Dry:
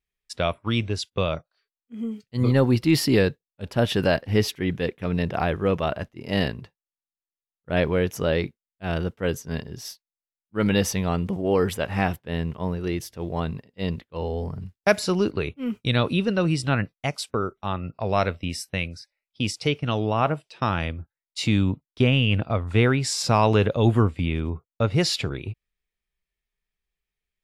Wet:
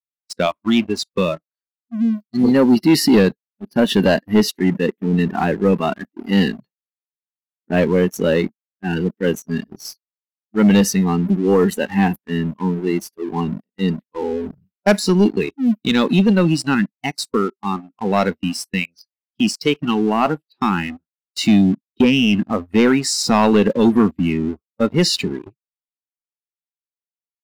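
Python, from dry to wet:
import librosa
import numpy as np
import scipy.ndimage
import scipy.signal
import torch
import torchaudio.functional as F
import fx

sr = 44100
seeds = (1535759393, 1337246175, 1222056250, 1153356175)

y = fx.noise_reduce_blind(x, sr, reduce_db=24)
y = fx.low_shelf_res(y, sr, hz=150.0, db=-10.0, q=3.0)
y = fx.leveller(y, sr, passes=2)
y = y * librosa.db_to_amplitude(-1.0)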